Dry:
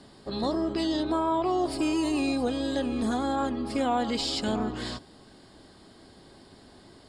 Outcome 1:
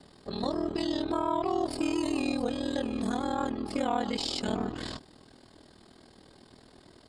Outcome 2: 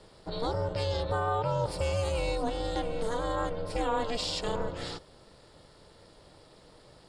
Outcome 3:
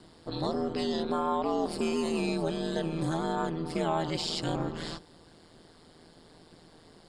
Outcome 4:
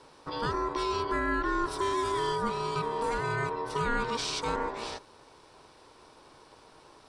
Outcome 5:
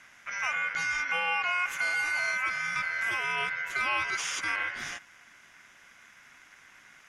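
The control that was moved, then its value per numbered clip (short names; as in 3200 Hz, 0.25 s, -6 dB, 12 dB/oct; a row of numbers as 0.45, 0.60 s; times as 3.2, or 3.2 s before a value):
ring modulator, frequency: 20, 230, 81, 700, 1800 Hz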